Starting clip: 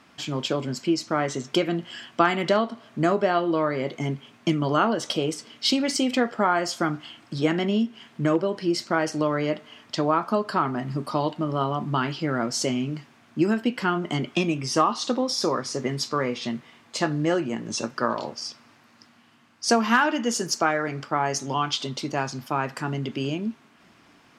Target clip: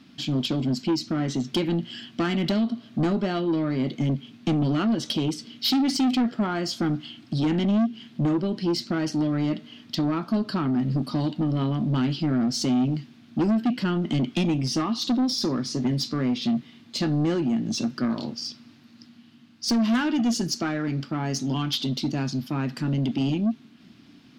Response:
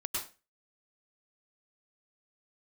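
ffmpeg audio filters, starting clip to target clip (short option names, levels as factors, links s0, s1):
-af "equalizer=f=125:t=o:w=1:g=5,equalizer=f=250:t=o:w=1:g=11,equalizer=f=500:t=o:w=1:g=-7,equalizer=f=1000:t=o:w=1:g=-8,equalizer=f=2000:t=o:w=1:g=-4,equalizer=f=4000:t=o:w=1:g=7,equalizer=f=8000:t=o:w=1:g=-7,asoftclip=type=tanh:threshold=0.119"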